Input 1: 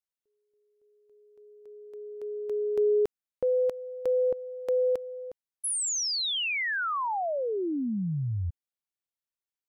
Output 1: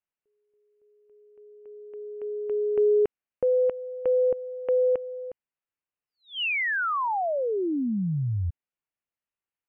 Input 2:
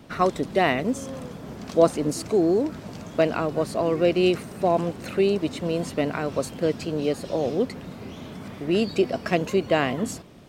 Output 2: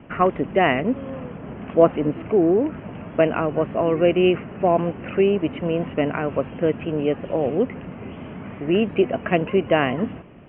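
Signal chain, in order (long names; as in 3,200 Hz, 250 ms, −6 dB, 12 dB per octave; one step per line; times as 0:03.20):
Butterworth low-pass 3,000 Hz 96 dB per octave
level +3 dB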